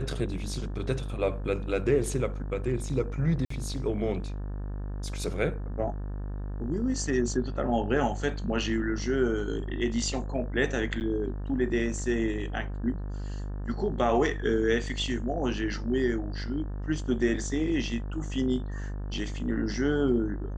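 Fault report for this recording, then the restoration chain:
mains buzz 50 Hz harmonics 36 −34 dBFS
0:03.45–0:03.50: drop-out 54 ms
0:11.00–0:11.01: drop-out 9.4 ms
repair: hum removal 50 Hz, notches 36
repair the gap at 0:03.45, 54 ms
repair the gap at 0:11.00, 9.4 ms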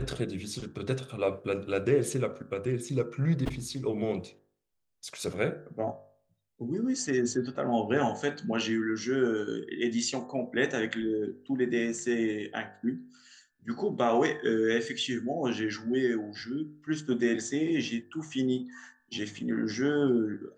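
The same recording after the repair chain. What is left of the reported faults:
none of them is left

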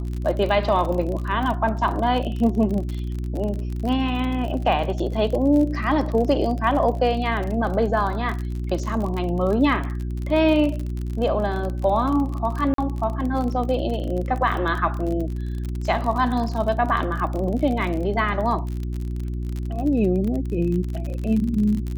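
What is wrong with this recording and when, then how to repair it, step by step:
surface crackle 39 per second −27 dBFS
mains hum 60 Hz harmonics 6 −27 dBFS
0:12.74–0:12.78: drop-out 43 ms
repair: click removal
hum removal 60 Hz, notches 6
repair the gap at 0:12.74, 43 ms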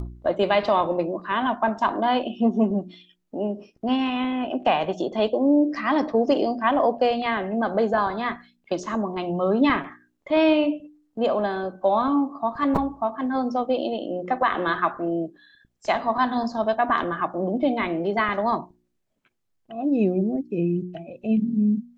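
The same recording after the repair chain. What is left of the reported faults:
none of them is left

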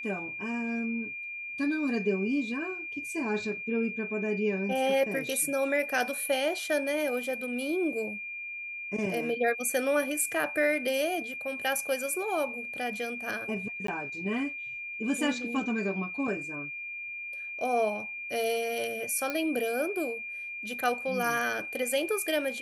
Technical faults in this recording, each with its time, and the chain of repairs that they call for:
whistle 2,400 Hz −36 dBFS
0:13.87–0:13.88: drop-out 13 ms
0:19.30: click −17 dBFS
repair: click removal
notch filter 2,400 Hz, Q 30
repair the gap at 0:13.87, 13 ms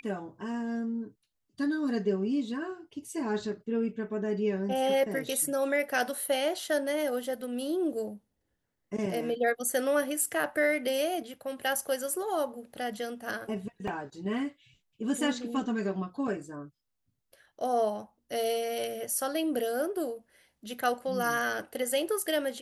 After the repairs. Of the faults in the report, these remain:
0:19.30: click

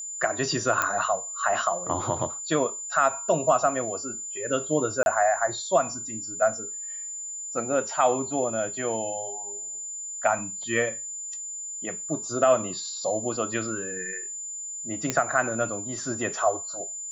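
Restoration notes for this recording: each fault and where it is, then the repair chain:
whistle 7,100 Hz −33 dBFS
0:00.82: click −8 dBFS
0:05.03–0:05.06: drop-out 31 ms
0:15.10: click −9 dBFS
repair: click removal
notch filter 7,100 Hz, Q 30
repair the gap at 0:05.03, 31 ms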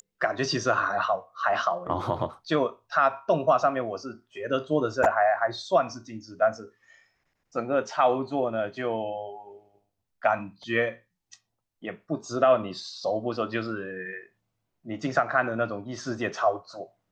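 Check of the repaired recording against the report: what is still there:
none of them is left

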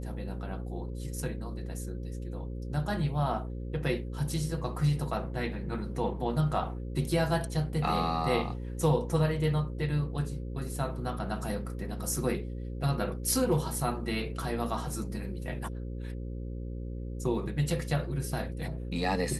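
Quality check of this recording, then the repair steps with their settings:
mains buzz 60 Hz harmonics 9 −37 dBFS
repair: hum removal 60 Hz, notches 9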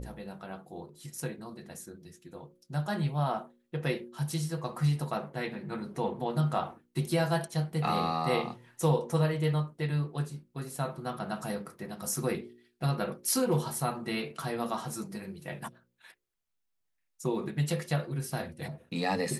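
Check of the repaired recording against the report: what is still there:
none of them is left

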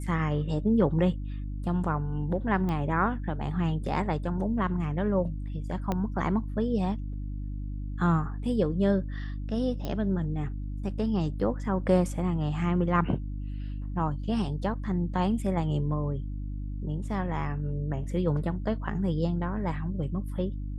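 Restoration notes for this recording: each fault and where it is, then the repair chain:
mains hum 50 Hz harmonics 6 −34 dBFS
0:02.69: click −21 dBFS
0:05.92: click −16 dBFS
0:09.85: click −20 dBFS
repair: click removal
hum removal 50 Hz, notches 6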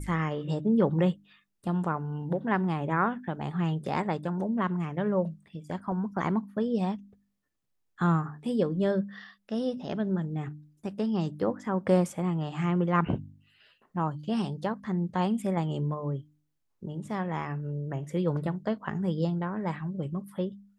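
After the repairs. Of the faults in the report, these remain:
0:05.92: click

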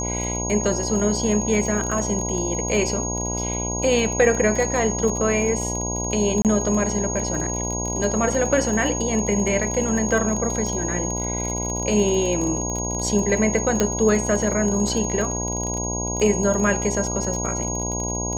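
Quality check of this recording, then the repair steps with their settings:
mains buzz 60 Hz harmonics 17 −28 dBFS
surface crackle 22 per second −25 dBFS
whistle 6,600 Hz −27 dBFS
0:06.42–0:06.45: drop-out 28 ms
0:13.80: click −5 dBFS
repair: click removal
hum removal 60 Hz, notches 17
notch filter 6,600 Hz, Q 30
repair the gap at 0:06.42, 28 ms

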